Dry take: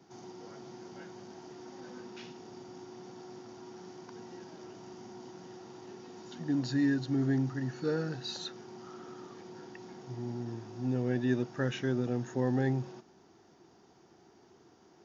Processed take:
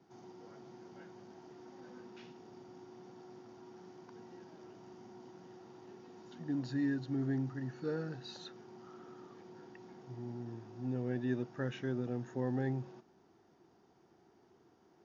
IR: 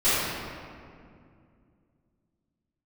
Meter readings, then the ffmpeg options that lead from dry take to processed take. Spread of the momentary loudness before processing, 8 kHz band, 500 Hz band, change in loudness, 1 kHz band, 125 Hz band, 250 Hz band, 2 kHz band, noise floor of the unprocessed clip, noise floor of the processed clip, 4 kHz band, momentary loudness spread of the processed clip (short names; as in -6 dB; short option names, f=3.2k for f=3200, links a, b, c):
18 LU, n/a, -5.5 dB, -5.5 dB, -6.0 dB, -5.5 dB, -5.5 dB, -7.0 dB, -61 dBFS, -67 dBFS, -10.0 dB, 19 LU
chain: -af "highshelf=f=4.5k:g=-10,volume=-5.5dB"